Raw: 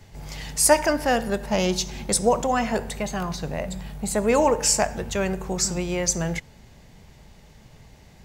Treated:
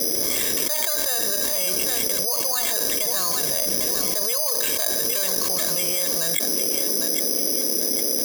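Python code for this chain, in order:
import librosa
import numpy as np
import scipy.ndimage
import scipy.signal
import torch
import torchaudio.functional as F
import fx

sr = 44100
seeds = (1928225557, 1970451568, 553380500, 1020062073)

p1 = fx.lowpass(x, sr, hz=1100.0, slope=6)
p2 = np.diff(p1, prepend=0.0)
p3 = p2 + 0.92 * np.pad(p2, (int(1.8 * sr / 1000.0), 0))[:len(p2)]
p4 = fx.dmg_noise_band(p3, sr, seeds[0], low_hz=220.0, high_hz=560.0, level_db=-59.0)
p5 = p4 + fx.echo_feedback(p4, sr, ms=803, feedback_pct=33, wet_db=-15.5, dry=0)
p6 = (np.kron(scipy.signal.resample_poly(p5, 1, 8), np.eye(8)[0]) * 8)[:len(p5)]
p7 = fx.env_flatten(p6, sr, amount_pct=100)
y = p7 * librosa.db_to_amplitude(-2.0)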